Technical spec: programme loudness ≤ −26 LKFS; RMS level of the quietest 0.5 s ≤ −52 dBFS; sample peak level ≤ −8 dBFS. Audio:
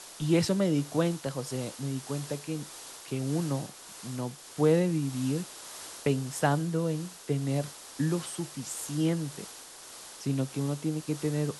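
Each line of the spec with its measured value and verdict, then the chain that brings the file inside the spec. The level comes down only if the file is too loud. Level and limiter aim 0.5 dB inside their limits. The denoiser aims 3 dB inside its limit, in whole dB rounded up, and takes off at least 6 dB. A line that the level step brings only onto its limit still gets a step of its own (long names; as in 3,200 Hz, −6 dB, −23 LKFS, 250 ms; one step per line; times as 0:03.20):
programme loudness −31.0 LKFS: in spec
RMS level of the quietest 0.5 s −47 dBFS: out of spec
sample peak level −13.0 dBFS: in spec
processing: broadband denoise 8 dB, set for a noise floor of −47 dBFS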